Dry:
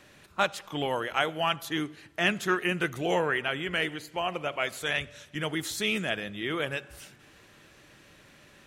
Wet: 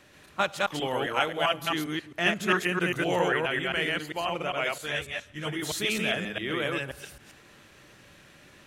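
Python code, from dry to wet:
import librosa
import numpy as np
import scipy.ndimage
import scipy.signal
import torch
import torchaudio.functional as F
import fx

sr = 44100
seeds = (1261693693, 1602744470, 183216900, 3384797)

y = fx.reverse_delay(x, sr, ms=133, wet_db=-0.5)
y = fx.ensemble(y, sr, at=(4.78, 5.62))
y = F.gain(torch.from_numpy(y), -1.0).numpy()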